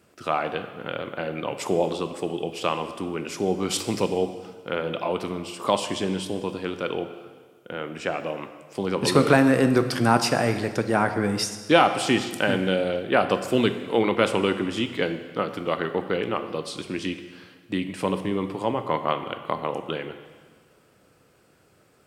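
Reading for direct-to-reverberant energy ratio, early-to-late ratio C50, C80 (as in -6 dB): 8.5 dB, 10.0 dB, 11.5 dB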